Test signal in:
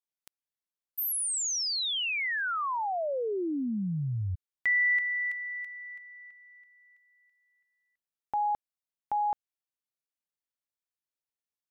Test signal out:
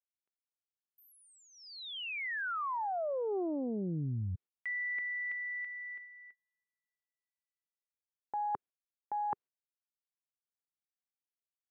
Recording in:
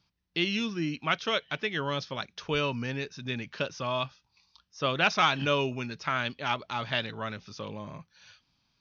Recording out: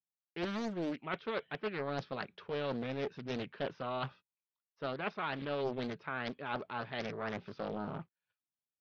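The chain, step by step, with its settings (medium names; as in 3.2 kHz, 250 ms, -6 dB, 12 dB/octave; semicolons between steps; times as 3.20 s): gate -49 dBFS, range -35 dB; high-pass 130 Hz 12 dB/octave; peaking EQ 400 Hz +6 dB 0.47 oct; reverse; compression 5:1, threshold -36 dBFS; reverse; distance through air 430 m; loudspeaker Doppler distortion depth 0.75 ms; trim +3.5 dB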